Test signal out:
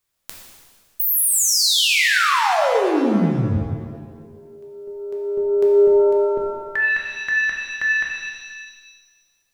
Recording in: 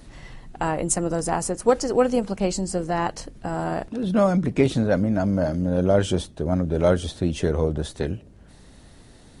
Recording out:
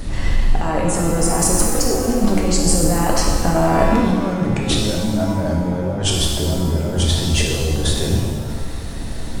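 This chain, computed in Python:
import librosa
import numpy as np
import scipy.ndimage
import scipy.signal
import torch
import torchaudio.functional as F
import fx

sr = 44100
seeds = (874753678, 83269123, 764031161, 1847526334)

y = fx.low_shelf(x, sr, hz=60.0, db=11.5)
y = fx.over_compress(y, sr, threshold_db=-29.0, ratio=-1.0)
y = fx.rev_shimmer(y, sr, seeds[0], rt60_s=1.5, semitones=7, shimmer_db=-8, drr_db=-1.5)
y = y * 10.0 ** (7.0 / 20.0)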